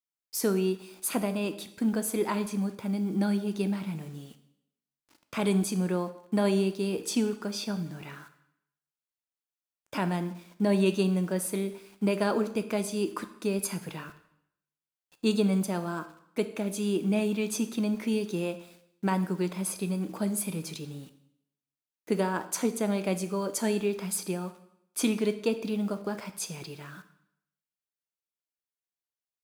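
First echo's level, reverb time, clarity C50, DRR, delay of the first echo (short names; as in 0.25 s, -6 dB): none, 0.75 s, 13.0 dB, 10.0 dB, none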